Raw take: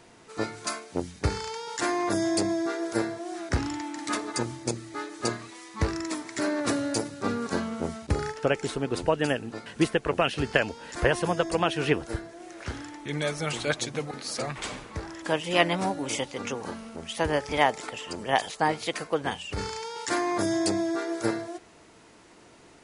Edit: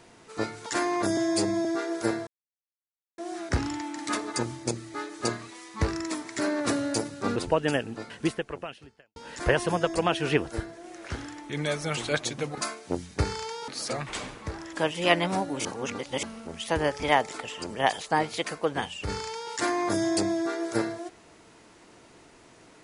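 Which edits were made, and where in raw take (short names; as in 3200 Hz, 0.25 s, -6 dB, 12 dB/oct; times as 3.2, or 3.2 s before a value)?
0.66–1.73 move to 14.17
2.24–2.56 stretch 1.5×
3.18 insert silence 0.91 s
7.36–8.92 cut
9.63–10.72 fade out quadratic
16.14–16.72 reverse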